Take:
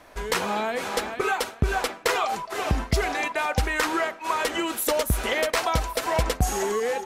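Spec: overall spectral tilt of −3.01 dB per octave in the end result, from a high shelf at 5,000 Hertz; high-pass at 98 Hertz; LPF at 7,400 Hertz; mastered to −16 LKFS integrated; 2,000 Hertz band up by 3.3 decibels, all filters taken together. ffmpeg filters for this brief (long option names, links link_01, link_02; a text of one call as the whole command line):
ffmpeg -i in.wav -af "highpass=98,lowpass=7400,equalizer=frequency=2000:width_type=o:gain=3.5,highshelf=frequency=5000:gain=4.5,volume=8.5dB" out.wav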